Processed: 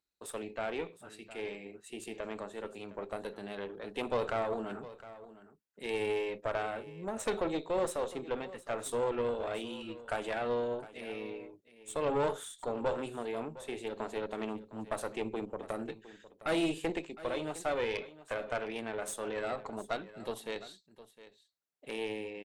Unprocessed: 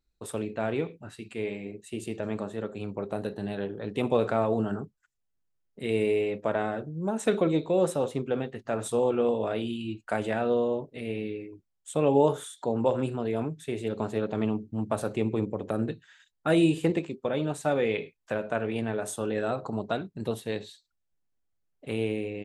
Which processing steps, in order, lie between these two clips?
high-pass 490 Hz 6 dB/octave; valve stage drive 24 dB, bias 0.65; delay 710 ms -16.5 dB

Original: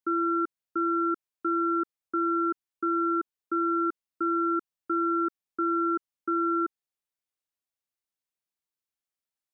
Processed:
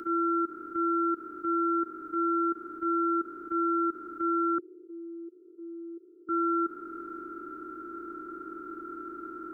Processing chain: spectral levelling over time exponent 0.2; compression 2:1, threshold -35 dBFS, peak gain reduction 7 dB; peak limiter -29.5 dBFS, peak gain reduction 8 dB; 4.58–6.29 s: Butterworth band-pass 400 Hz, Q 3.3; three bands expanded up and down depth 70%; trim +8.5 dB

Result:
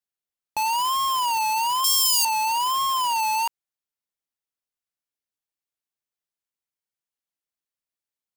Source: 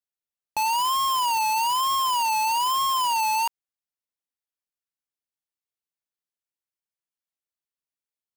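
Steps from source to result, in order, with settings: 1.84–2.25 s: FFT filter 510 Hz 0 dB, 1.3 kHz -17 dB, 4.8 kHz +13 dB

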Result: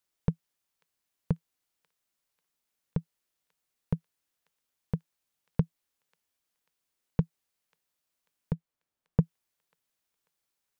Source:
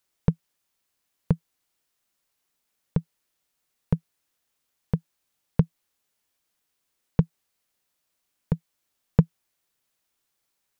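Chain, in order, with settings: 8.53–9.21 s: treble shelf 2.2 kHz -11 dB; on a send: feedback echo behind a high-pass 541 ms, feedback 46%, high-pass 2.4 kHz, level -17.5 dB; on the sum: trim -6 dB

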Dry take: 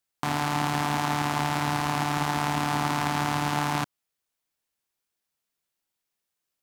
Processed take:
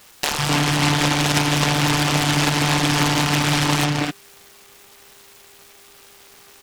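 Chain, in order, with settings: peaking EQ 5.5 kHz -12 dB 2 oct; reverb removal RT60 0.61 s; treble shelf 2.4 kHz +11 dB; mains buzz 400 Hz, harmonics 32, -57 dBFS -2 dB/octave; comb 6.7 ms, depth 92%; low-pass that closes with the level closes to 350 Hz, closed at -15 dBFS; three bands offset in time highs, lows, mids 150/260 ms, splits 170/830 Hz; delay time shaken by noise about 1.9 kHz, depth 0.23 ms; trim +7.5 dB

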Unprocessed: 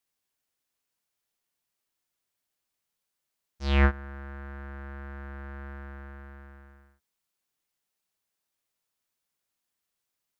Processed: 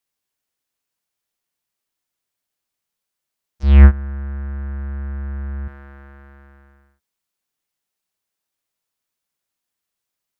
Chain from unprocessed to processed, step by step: 3.63–5.68 s: tone controls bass +14 dB, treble -11 dB; trim +1.5 dB

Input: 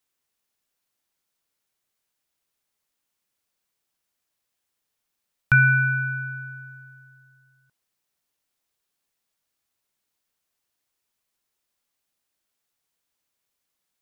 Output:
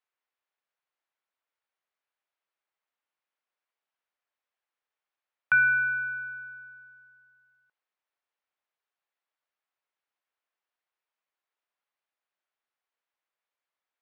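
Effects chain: band-pass 580–2300 Hz; trim -2.5 dB

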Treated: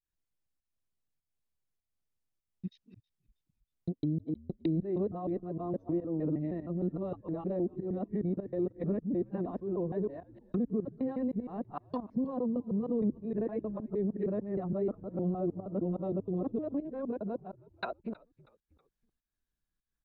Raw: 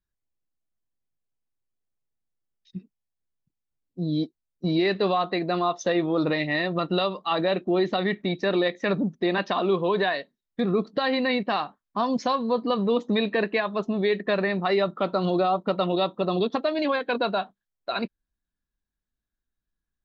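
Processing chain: time reversed locally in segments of 155 ms; low-pass that closes with the level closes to 330 Hz, closed at -24 dBFS; in parallel at -1 dB: peak limiter -23 dBFS, peak gain reduction 8 dB; on the sum: volume shaper 100 bpm, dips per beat 1, -16 dB, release 221 ms; frequency-shifting echo 320 ms, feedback 46%, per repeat -74 Hz, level -23 dB; trim -8 dB

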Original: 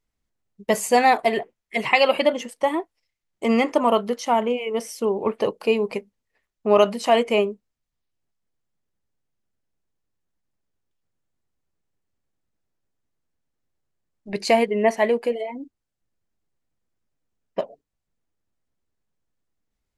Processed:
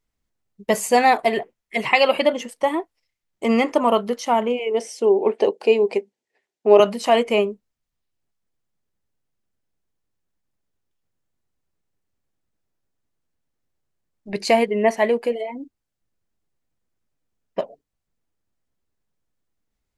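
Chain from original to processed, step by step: 4.59–6.80 s: cabinet simulation 250–9200 Hz, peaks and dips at 380 Hz +9 dB, 760 Hz +5 dB, 1.2 kHz -9 dB; trim +1 dB

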